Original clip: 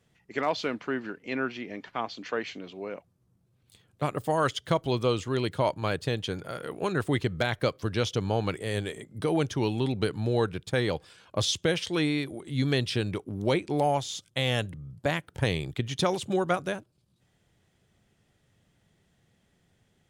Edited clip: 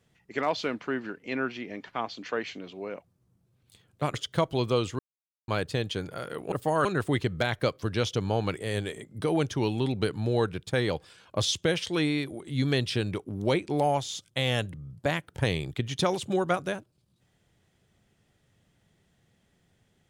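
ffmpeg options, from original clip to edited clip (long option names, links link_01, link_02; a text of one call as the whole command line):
ffmpeg -i in.wav -filter_complex "[0:a]asplit=6[link_01][link_02][link_03][link_04][link_05][link_06];[link_01]atrim=end=4.142[link_07];[link_02]atrim=start=4.468:end=5.32,asetpts=PTS-STARTPTS,afade=type=out:start_time=0.848:duration=0.004:curve=hsin[link_08];[link_03]atrim=start=5.32:end=5.81,asetpts=PTS-STARTPTS,volume=0[link_09];[link_04]atrim=start=5.81:end=6.852,asetpts=PTS-STARTPTS,afade=type=in:duration=0.004:curve=hsin[link_10];[link_05]atrim=start=4.138:end=4.472[link_11];[link_06]atrim=start=6.848[link_12];[link_08][link_09][link_10]concat=n=3:v=0:a=1[link_13];[link_07][link_13]acrossfade=duration=0.004:curve1=hsin:curve2=hsin[link_14];[link_14][link_11]acrossfade=duration=0.004:curve1=hsin:curve2=hsin[link_15];[link_15][link_12]acrossfade=duration=0.004:curve1=hsin:curve2=hsin" out.wav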